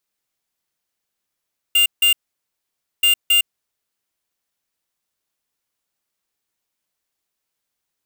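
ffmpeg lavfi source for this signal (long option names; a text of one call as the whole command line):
ffmpeg -f lavfi -i "aevalsrc='0.2*(2*lt(mod(2800*t,1),0.5)-1)*clip(min(mod(mod(t,1.28),0.27),0.11-mod(mod(t,1.28),0.27))/0.005,0,1)*lt(mod(t,1.28),0.54)':duration=2.56:sample_rate=44100" out.wav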